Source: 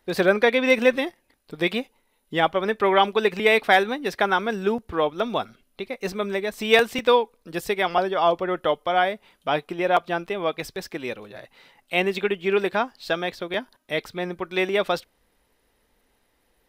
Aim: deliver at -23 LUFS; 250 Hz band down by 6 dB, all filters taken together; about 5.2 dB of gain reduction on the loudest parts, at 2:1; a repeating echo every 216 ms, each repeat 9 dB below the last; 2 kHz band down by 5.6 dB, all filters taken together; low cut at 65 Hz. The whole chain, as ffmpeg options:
-af "highpass=65,equalizer=f=250:t=o:g=-9,equalizer=f=2000:t=o:g=-7,acompressor=threshold=0.0631:ratio=2,aecho=1:1:216|432|648|864:0.355|0.124|0.0435|0.0152,volume=2"

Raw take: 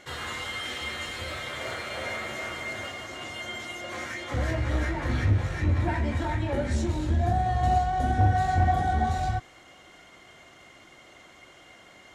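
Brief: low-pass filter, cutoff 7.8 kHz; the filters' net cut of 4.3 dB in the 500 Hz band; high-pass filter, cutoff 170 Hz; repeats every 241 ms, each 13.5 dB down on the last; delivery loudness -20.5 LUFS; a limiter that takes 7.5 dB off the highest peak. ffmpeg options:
-af "highpass=170,lowpass=7800,equalizer=f=500:t=o:g=-6.5,alimiter=limit=0.0631:level=0:latency=1,aecho=1:1:241|482:0.211|0.0444,volume=4.47"

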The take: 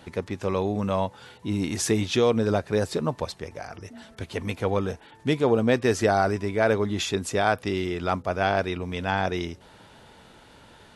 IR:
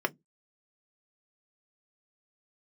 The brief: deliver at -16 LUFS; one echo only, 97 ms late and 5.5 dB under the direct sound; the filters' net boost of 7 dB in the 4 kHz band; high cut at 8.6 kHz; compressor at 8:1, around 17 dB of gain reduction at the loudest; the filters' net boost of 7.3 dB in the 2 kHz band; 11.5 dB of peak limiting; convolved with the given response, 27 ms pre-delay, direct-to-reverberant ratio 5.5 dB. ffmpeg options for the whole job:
-filter_complex "[0:a]lowpass=8600,equalizer=f=2000:t=o:g=8.5,equalizer=f=4000:t=o:g=6,acompressor=threshold=0.0224:ratio=8,alimiter=level_in=2:limit=0.0631:level=0:latency=1,volume=0.501,aecho=1:1:97:0.531,asplit=2[s0][s1];[1:a]atrim=start_sample=2205,adelay=27[s2];[s1][s2]afir=irnorm=-1:irlink=0,volume=0.2[s3];[s0][s3]amix=inputs=2:normalize=0,volume=15.8"

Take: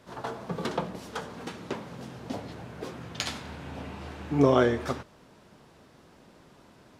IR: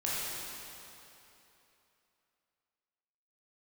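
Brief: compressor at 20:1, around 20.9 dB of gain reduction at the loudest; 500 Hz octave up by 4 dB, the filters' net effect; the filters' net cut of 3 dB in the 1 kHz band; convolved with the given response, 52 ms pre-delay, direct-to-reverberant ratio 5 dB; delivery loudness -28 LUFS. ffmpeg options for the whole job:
-filter_complex "[0:a]equalizer=f=500:t=o:g=6.5,equalizer=f=1000:t=o:g=-6.5,acompressor=threshold=0.02:ratio=20,asplit=2[s0][s1];[1:a]atrim=start_sample=2205,adelay=52[s2];[s1][s2]afir=irnorm=-1:irlink=0,volume=0.251[s3];[s0][s3]amix=inputs=2:normalize=0,volume=3.76"

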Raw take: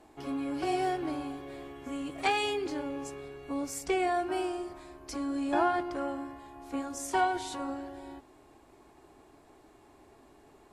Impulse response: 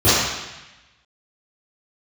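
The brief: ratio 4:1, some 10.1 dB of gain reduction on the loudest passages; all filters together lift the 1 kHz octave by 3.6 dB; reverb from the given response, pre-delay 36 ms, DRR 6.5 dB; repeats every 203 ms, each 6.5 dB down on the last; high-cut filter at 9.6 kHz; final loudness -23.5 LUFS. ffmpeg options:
-filter_complex "[0:a]lowpass=9600,equalizer=f=1000:t=o:g=5.5,acompressor=threshold=0.0251:ratio=4,aecho=1:1:203|406|609|812|1015|1218:0.473|0.222|0.105|0.0491|0.0231|0.0109,asplit=2[s0][s1];[1:a]atrim=start_sample=2205,adelay=36[s2];[s1][s2]afir=irnorm=-1:irlink=0,volume=0.0266[s3];[s0][s3]amix=inputs=2:normalize=0,volume=3.55"

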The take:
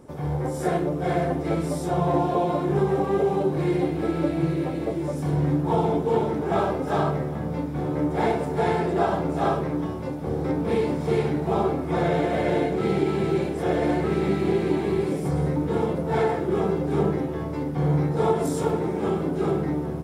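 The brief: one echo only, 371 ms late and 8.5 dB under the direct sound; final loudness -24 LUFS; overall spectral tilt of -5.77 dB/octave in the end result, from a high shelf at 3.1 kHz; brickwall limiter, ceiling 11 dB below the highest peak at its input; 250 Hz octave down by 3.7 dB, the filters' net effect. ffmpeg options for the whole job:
-af "equalizer=f=250:t=o:g=-6,highshelf=f=3100:g=-5,alimiter=limit=0.075:level=0:latency=1,aecho=1:1:371:0.376,volume=2.11"

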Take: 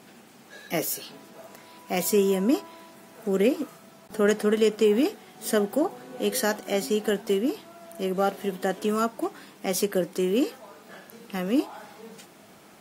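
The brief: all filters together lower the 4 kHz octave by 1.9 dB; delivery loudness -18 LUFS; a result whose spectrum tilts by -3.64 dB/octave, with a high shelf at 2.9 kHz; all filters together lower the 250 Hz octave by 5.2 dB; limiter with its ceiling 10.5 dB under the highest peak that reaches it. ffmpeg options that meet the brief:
-af "equalizer=f=250:t=o:g=-7,highshelf=f=2900:g=4.5,equalizer=f=4000:t=o:g=-7,volume=5.62,alimiter=limit=0.447:level=0:latency=1"

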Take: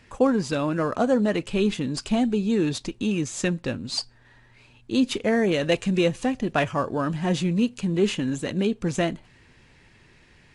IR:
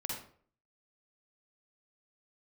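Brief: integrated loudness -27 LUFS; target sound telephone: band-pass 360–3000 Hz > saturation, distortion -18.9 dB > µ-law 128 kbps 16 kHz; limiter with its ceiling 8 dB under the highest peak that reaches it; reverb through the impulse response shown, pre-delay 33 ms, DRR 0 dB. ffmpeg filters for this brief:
-filter_complex "[0:a]alimiter=limit=0.158:level=0:latency=1,asplit=2[s0][s1];[1:a]atrim=start_sample=2205,adelay=33[s2];[s1][s2]afir=irnorm=-1:irlink=0,volume=0.841[s3];[s0][s3]amix=inputs=2:normalize=0,highpass=360,lowpass=3000,asoftclip=threshold=0.126,volume=1.26" -ar 16000 -c:a pcm_mulaw

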